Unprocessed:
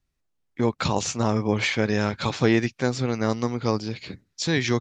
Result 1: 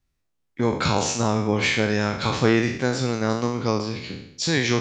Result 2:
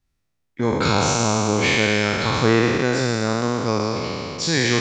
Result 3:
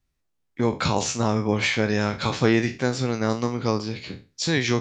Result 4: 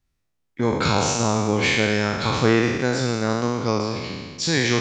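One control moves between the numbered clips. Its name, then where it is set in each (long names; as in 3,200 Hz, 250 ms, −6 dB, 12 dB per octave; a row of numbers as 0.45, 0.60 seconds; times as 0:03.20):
peak hold with a decay on every bin, RT60: 0.69, 3.17, 0.31, 1.53 seconds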